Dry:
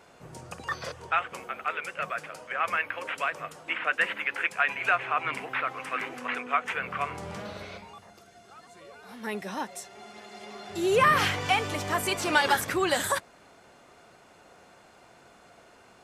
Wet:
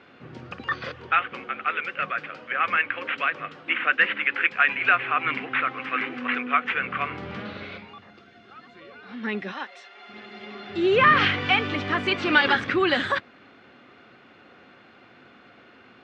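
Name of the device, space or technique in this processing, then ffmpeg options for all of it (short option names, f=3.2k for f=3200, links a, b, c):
guitar cabinet: -filter_complex "[0:a]asplit=3[a][b][c];[a]afade=t=out:st=9.51:d=0.02[d];[b]highpass=640,afade=t=in:st=9.51:d=0.02,afade=t=out:st=10.08:d=0.02[e];[c]afade=t=in:st=10.08:d=0.02[f];[d][e][f]amix=inputs=3:normalize=0,highpass=110,equalizer=f=170:t=q:w=4:g=-5,equalizer=f=250:t=q:w=4:g=5,equalizer=f=450:t=q:w=4:g=-4,equalizer=f=650:t=q:w=4:g=-9,equalizer=f=930:t=q:w=4:g=-9,lowpass=f=3.6k:w=0.5412,lowpass=f=3.6k:w=1.3066,volume=6.5dB"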